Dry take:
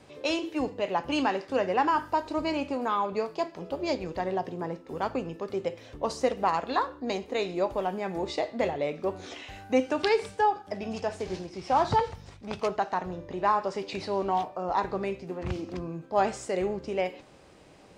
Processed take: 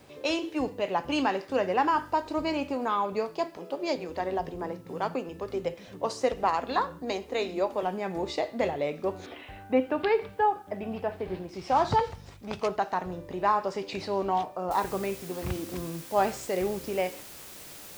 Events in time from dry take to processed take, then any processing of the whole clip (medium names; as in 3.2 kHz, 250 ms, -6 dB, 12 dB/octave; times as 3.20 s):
3.57–7.83 s: bands offset in time highs, lows 380 ms, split 190 Hz
9.26–11.49 s: Bessel low-pass 2.4 kHz, order 8
14.71 s: noise floor step -69 dB -46 dB